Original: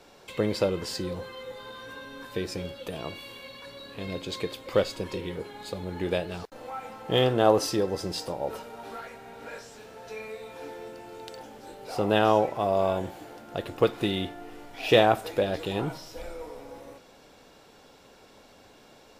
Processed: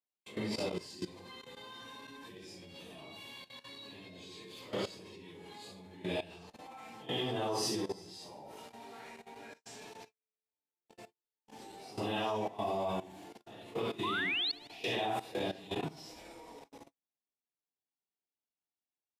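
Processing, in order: phase scrambler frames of 0.2 s; LPF 12000 Hz 12 dB/oct; bell 520 Hz -12 dB 0.37 oct; 9.53–11.64 negative-ratio compressor -49 dBFS, ratio -1; bell 1400 Hz -10.5 dB 0.42 oct; 14.03–14.52 painted sound rise 960–4600 Hz -29 dBFS; feedback echo 74 ms, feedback 60%, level -18 dB; level quantiser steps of 16 dB; HPF 210 Hz 6 dB/oct; gate -53 dBFS, range -39 dB; gain -1 dB

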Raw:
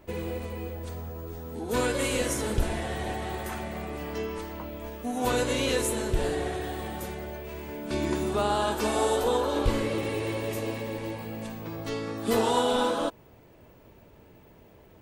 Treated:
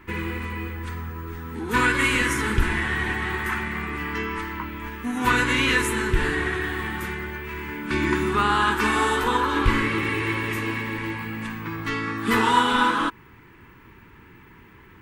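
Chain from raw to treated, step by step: EQ curve 370 Hz 0 dB, 620 Hz -20 dB, 970 Hz +5 dB, 1900 Hz +11 dB, 4100 Hz -3 dB, 6100 Hz -5 dB; gain +5 dB

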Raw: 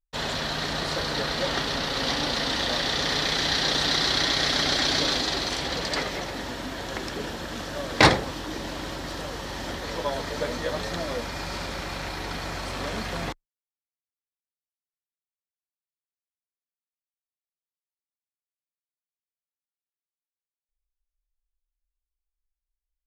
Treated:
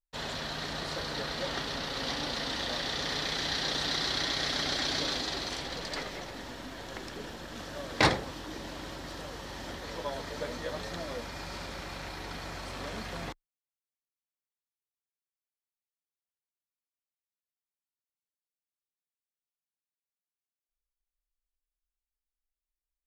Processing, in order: 5.62–7.56 half-wave gain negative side -3 dB; gain -7.5 dB

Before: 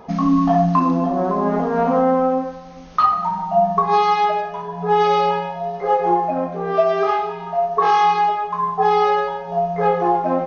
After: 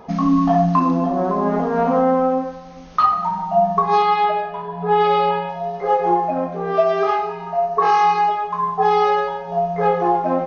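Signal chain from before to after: 4.02–5.49 LPF 4300 Hz 24 dB/oct; 7.15–8.31 notch 3400 Hz, Q 6.2

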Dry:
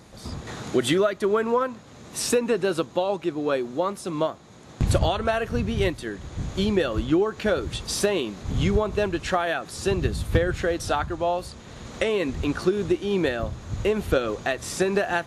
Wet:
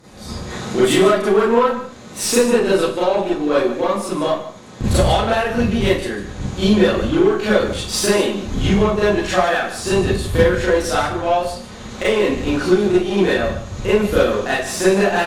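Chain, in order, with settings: echo 0.149 s -12.5 dB; added harmonics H 8 -25 dB, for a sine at -8.5 dBFS; Schroeder reverb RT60 0.34 s, combs from 30 ms, DRR -9 dB; gain -2 dB

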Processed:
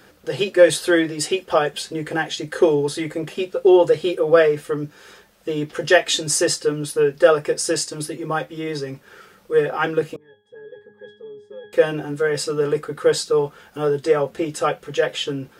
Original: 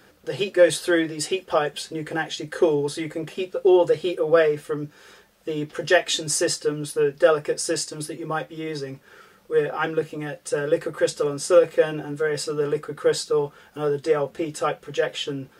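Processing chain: 10.16–11.73 octave resonator G#, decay 0.41 s; gain +3.5 dB

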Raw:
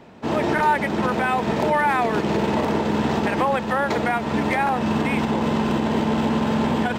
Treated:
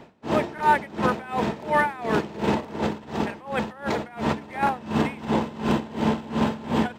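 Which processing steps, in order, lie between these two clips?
2.76–4.63 negative-ratio compressor -25 dBFS, ratio -1; dB-linear tremolo 2.8 Hz, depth 20 dB; gain +1.5 dB

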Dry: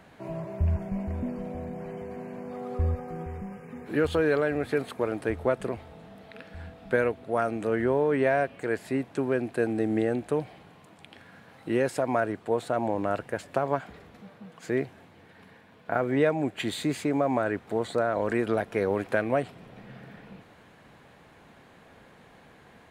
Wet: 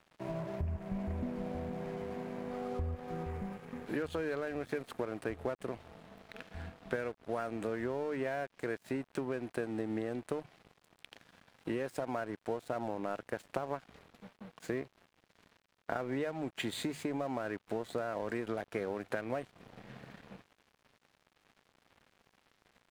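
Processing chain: compressor 6:1, threshold -32 dBFS, peak gain reduction 13.5 dB; notches 50/100/150 Hz; crossover distortion -49.5 dBFS

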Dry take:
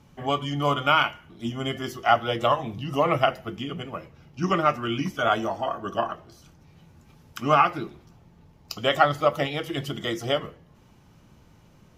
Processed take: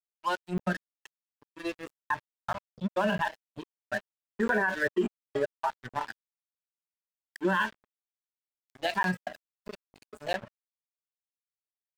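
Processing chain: pitch shift +4 st; tilt -2 dB/oct; step gate ".xxxxx.x...x..x" 157 bpm -60 dB; ripple EQ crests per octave 1.3, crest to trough 13 dB; spectral noise reduction 23 dB; spectral gain 3.33–5.69, 360–2400 Hz +11 dB; gate with hold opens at -40 dBFS; crossover distortion -35 dBFS; limiter -16.5 dBFS, peak gain reduction 21.5 dB; crackling interface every 0.65 s, samples 512, zero, from 0.58; gain -1.5 dB

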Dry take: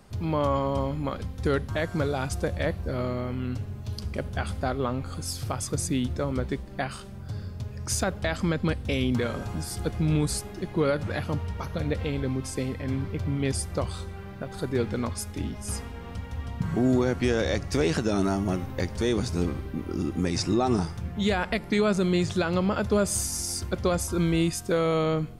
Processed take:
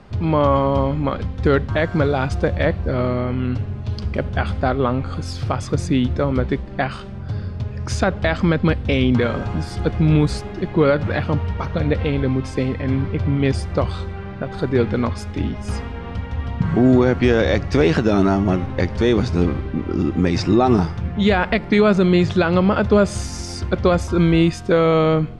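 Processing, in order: LPF 3500 Hz 12 dB/oct; gain +9 dB

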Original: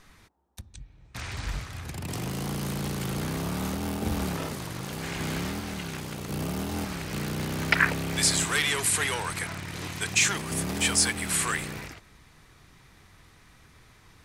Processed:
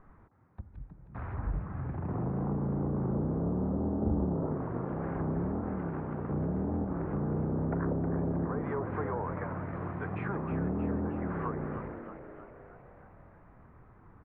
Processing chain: LPF 1300 Hz 24 dB/oct; treble ducked by the level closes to 610 Hz, closed at -27.5 dBFS; frequency-shifting echo 0.314 s, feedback 57%, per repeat +83 Hz, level -9.5 dB

